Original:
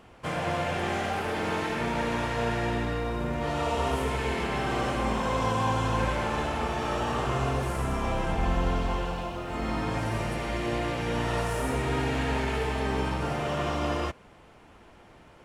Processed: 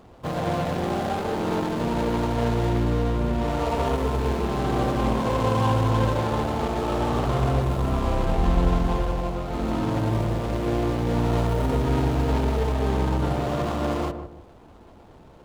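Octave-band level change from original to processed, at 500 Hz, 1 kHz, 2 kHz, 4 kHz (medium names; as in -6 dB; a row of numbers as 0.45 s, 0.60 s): +4.5 dB, +2.0 dB, -3.5 dB, -0.5 dB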